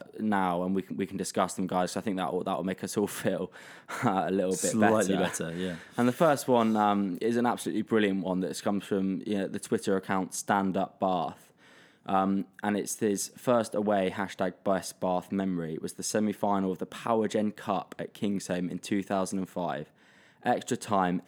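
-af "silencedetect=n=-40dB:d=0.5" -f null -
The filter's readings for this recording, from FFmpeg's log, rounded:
silence_start: 11.33
silence_end: 12.06 | silence_duration: 0.73
silence_start: 19.84
silence_end: 20.45 | silence_duration: 0.62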